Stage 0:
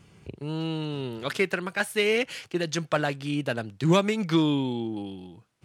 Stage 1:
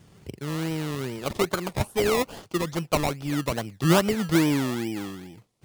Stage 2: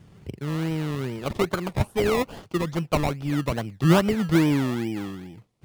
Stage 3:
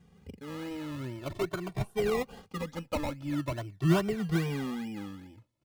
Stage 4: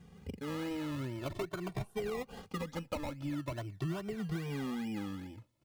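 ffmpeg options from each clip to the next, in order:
-filter_complex "[0:a]acrossover=split=2900[s0][s1];[s0]acrusher=samples=23:mix=1:aa=0.000001:lfo=1:lforange=13.8:lforate=2.4[s2];[s1]acompressor=threshold=0.00398:ratio=6[s3];[s2][s3]amix=inputs=2:normalize=0,volume=1.19"
-af "bass=f=250:g=4,treble=f=4000:g=-6"
-filter_complex "[0:a]asplit=2[s0][s1];[s1]adelay=2.1,afreqshift=0.44[s2];[s0][s2]amix=inputs=2:normalize=1,volume=0.531"
-af "acompressor=threshold=0.0126:ratio=8,volume=1.5"

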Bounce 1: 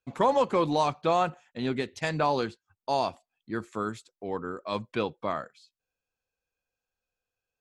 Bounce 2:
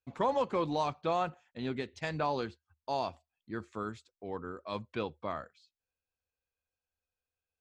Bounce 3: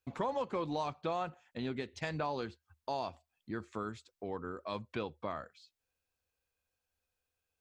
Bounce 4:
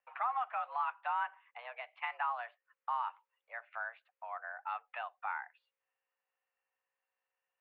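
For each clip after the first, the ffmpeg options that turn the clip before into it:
-af "lowpass=6500,equalizer=f=77:t=o:w=0.4:g=12.5,volume=0.473"
-af "acompressor=threshold=0.00562:ratio=2,volume=1.78"
-af "aeval=exprs='val(0)+0.000501*(sin(2*PI*60*n/s)+sin(2*PI*2*60*n/s)/2+sin(2*PI*3*60*n/s)/3+sin(2*PI*4*60*n/s)/4+sin(2*PI*5*60*n/s)/5)':c=same,highpass=f=560:t=q:w=0.5412,highpass=f=560:t=q:w=1.307,lowpass=f=2400:t=q:w=0.5176,lowpass=f=2400:t=q:w=0.7071,lowpass=f=2400:t=q:w=1.932,afreqshift=240,volume=1.33"

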